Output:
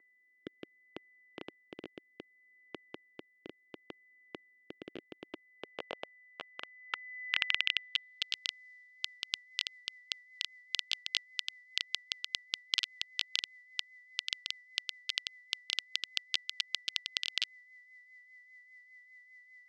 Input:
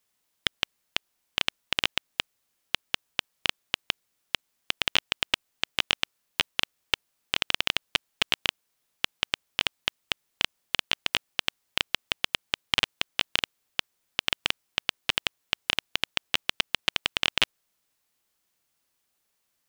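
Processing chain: whine 2000 Hz -40 dBFS; band-pass sweep 340 Hz -> 4700 Hz, 5.4–8.35; rotary speaker horn 0.65 Hz, later 5 Hz, at 8.48; gain +1.5 dB

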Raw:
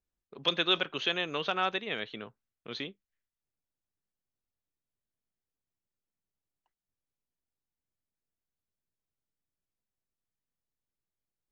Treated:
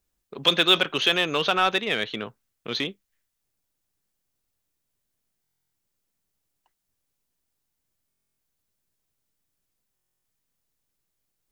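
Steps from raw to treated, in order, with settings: high shelf 5300 Hz +6 dB; in parallel at -5 dB: hard clip -31.5 dBFS, distortion -3 dB; on the sum: stuck buffer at 5.42/8.08/9.94, samples 1024, times 12; gain +6 dB

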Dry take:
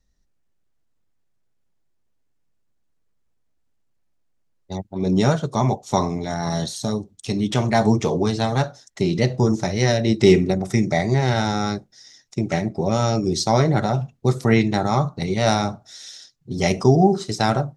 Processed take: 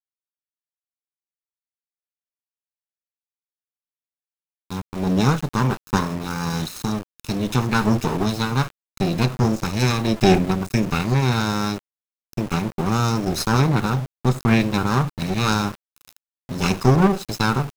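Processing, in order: minimum comb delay 0.76 ms; sample gate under -31.5 dBFS

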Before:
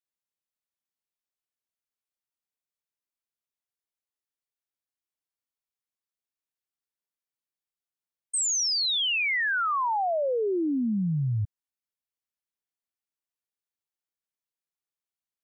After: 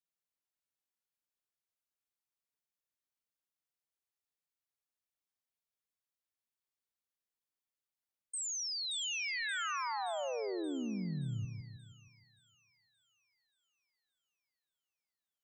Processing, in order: limiter -31.5 dBFS, peak gain reduction 8.5 dB; on a send: split-band echo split 2300 Hz, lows 0.157 s, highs 0.576 s, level -6.5 dB; on the sum: gain -4 dB

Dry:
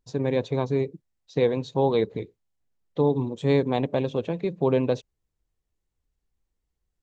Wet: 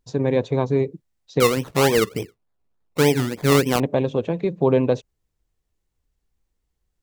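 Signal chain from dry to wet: dynamic EQ 4100 Hz, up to -4 dB, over -47 dBFS, Q 0.97; 1.4–3.8 decimation with a swept rate 22×, swing 60% 3.4 Hz; gain +4.5 dB

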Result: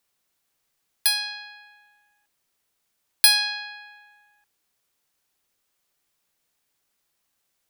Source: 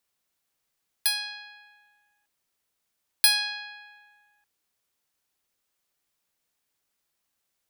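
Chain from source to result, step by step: on a send: reverb RT60 0.40 s, pre-delay 3 ms, DRR 19 dB; on the sum: gain +4 dB

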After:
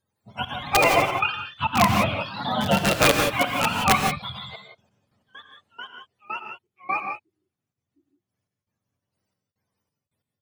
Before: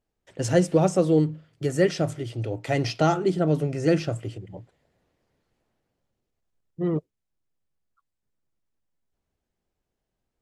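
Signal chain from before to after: spectrum mirrored in octaves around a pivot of 620 Hz; step gate "xxxx..xxx..x..x." 135 bpm -24 dB; wrapped overs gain 14 dB; echoes that change speed 0.158 s, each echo +2 st, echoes 3, each echo -6 dB; non-linear reverb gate 0.2 s rising, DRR 4 dB; gain +5 dB

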